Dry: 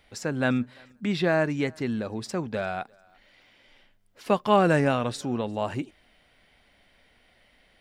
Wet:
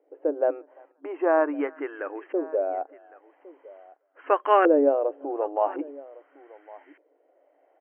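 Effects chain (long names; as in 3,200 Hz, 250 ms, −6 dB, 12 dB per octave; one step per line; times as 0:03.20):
auto-filter low-pass saw up 0.43 Hz 460–1,900 Hz
single-tap delay 1,109 ms −21 dB
brick-wall band-pass 270–3,200 Hz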